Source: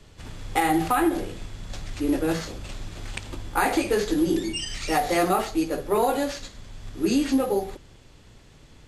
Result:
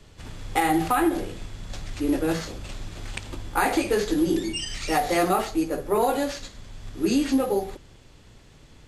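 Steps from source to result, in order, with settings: 5.51–6.01 dynamic EQ 3700 Hz, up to -5 dB, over -49 dBFS, Q 1

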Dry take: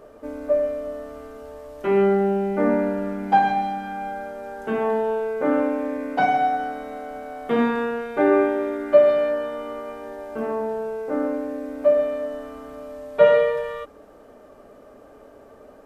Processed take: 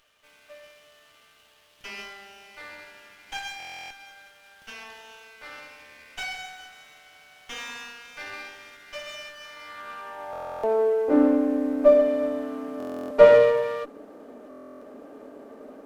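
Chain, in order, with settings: high-pass sweep 3000 Hz -> 250 Hz, 9.35–11.26; stuck buffer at 3.58/10.31/12.78/14.49, samples 1024, times 13; running maximum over 5 samples

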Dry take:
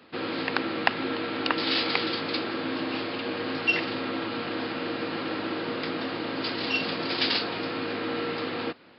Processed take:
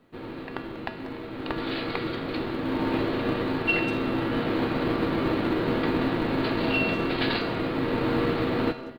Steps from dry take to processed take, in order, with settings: half-waves squared off; elliptic low-pass 4300 Hz, stop band 40 dB; tilt -2 dB/oct; AGC gain up to 15 dB; resonator 130 Hz, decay 0.73 s, harmonics odd, mix 80%; companded quantiser 8-bit; speakerphone echo 0.19 s, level -14 dB; reverb RT60 1.3 s, pre-delay 35 ms, DRR 17.5 dB

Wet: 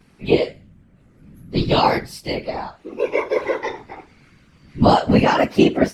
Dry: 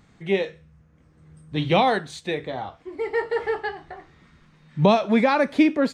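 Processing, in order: inharmonic rescaling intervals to 108%; whisperiser; gain +6.5 dB

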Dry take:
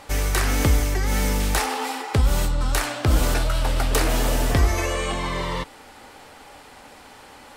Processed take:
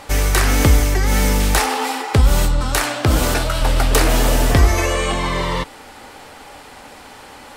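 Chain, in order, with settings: 2.6–3.61 HPF 73 Hz 6 dB/oct; gain +6 dB

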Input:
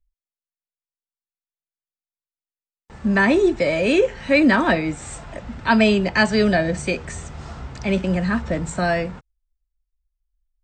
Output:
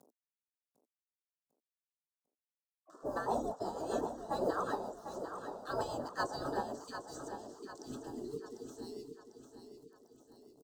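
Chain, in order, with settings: G.711 law mismatch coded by A; spectral delete 6.73–9.48, 460–1900 Hz; Chebyshev band-stop 760–6300 Hz, order 2; spectral gate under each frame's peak -20 dB weak; three-band isolator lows -20 dB, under 210 Hz, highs -16 dB, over 2100 Hz; upward compressor, threshold -50 dBFS; rotary speaker horn 1 Hz, later 7.5 Hz, at 2.7; feedback echo 0.748 s, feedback 48%, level -9 dB; gain +6.5 dB

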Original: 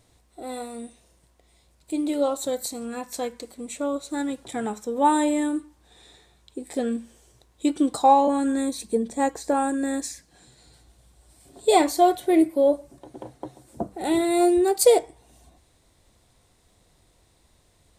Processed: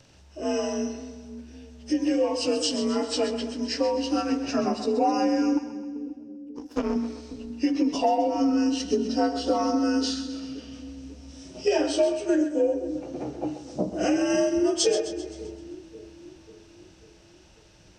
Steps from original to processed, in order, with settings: inharmonic rescaling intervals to 88%; reverb RT60 0.40 s, pre-delay 3 ms, DRR 9.5 dB; 5.57–6.96 power-law curve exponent 2; compressor 6:1, threshold -29 dBFS, peak gain reduction 17 dB; split-band echo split 380 Hz, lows 0.541 s, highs 0.13 s, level -10.5 dB; gain +8 dB

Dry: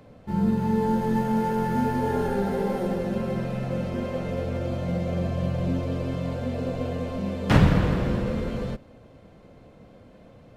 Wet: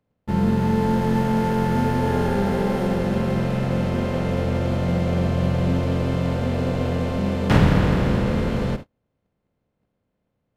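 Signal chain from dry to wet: per-bin compression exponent 0.6; gate -28 dBFS, range -40 dB

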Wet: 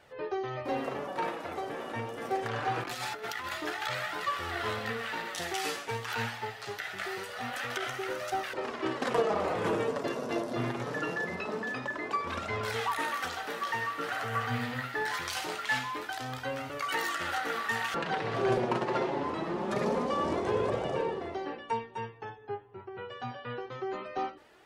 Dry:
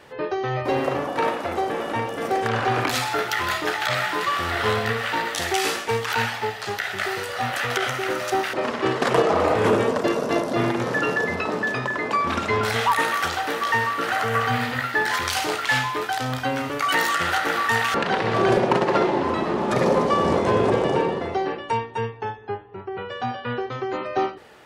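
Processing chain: flange 0.24 Hz, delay 1.3 ms, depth 7.3 ms, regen +38%; 2.8–3.52 negative-ratio compressor -30 dBFS, ratio -0.5; gain -6.5 dB

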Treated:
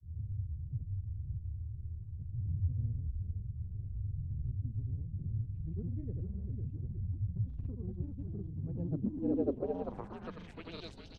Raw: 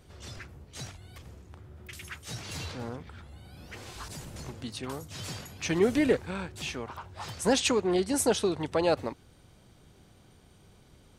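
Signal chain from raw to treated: Wiener smoothing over 41 samples; high shelf 2300 Hz +10.5 dB; in parallel at +2 dB: compressor, threshold -37 dBFS, peak gain reduction 19.5 dB; on the sum: wrapped overs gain 9.5 dB; on a send: frequency-shifting echo 0.464 s, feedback 57%, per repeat -42 Hz, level -7 dB; on the sum: grains, pitch spread up and down by 0 st; low-pass sweep 100 Hz -> 4200 Hz, 8.62–10.88; gain -3 dB

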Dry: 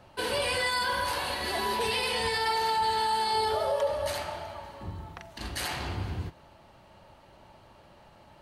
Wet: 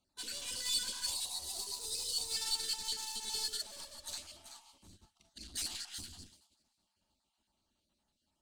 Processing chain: random spectral dropouts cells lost 36%; in parallel at -8.5 dB: wrapped overs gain 26 dB; 1.07–2.35 on the sum: fixed phaser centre 580 Hz, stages 4; Schroeder reverb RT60 0.33 s, combs from 27 ms, DRR 13 dB; added harmonics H 4 -9 dB, 5 -10 dB, 7 -15 dB, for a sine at -17 dBFS; limiter -26 dBFS, peak gain reduction 12 dB; soft clip -37.5 dBFS, distortion -9 dB; graphic EQ 125/250/500/1000/2000/4000/8000 Hz -12/+6/-12/-5/-7/+6/+12 dB; on a send: thin delay 0.384 s, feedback 35%, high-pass 4300 Hz, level -4 dB; 1.14–2.3 on the sum: spectral gain 1400–3600 Hz -7 dB; 4.94–5.52 high shelf 9100 Hz -4 dB; upward expander 2.5:1, over -54 dBFS; gain +3.5 dB

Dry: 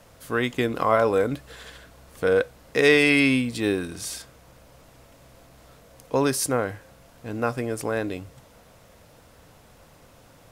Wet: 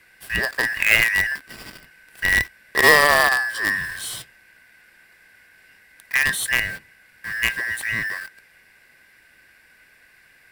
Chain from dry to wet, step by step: four-band scrambler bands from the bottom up 2143; in parallel at -7 dB: companded quantiser 2-bit; on the sum: bell 6500 Hz -9.5 dB 0.28 oct; gain -1.5 dB

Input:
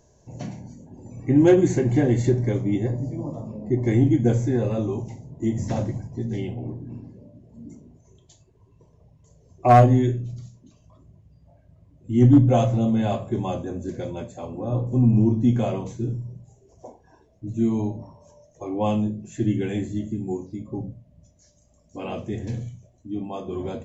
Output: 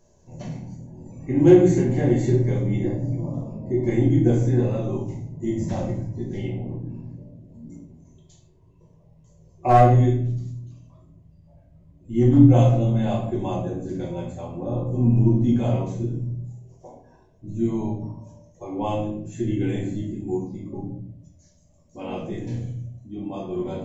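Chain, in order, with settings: shoebox room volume 95 m³, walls mixed, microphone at 1.1 m; gain -5.5 dB

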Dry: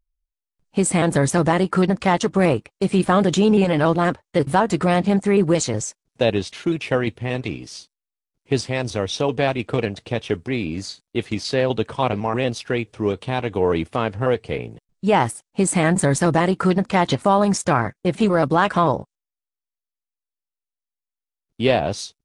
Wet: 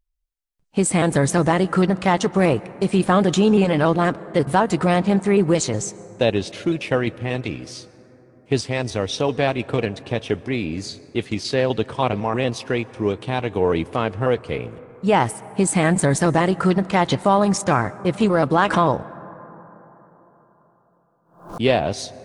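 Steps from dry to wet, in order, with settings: plate-style reverb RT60 4.2 s, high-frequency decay 0.25×, pre-delay 0.11 s, DRR 19 dB; 18.6–21.62 backwards sustainer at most 110 dB/s

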